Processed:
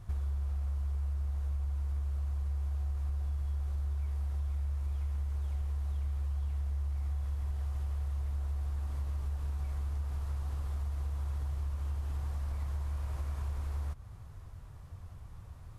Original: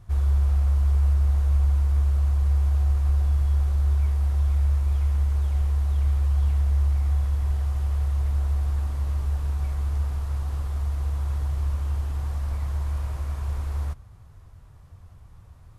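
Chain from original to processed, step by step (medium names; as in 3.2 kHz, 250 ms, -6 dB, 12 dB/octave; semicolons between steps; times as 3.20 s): compression, threshold -33 dBFS, peak gain reduction 15 dB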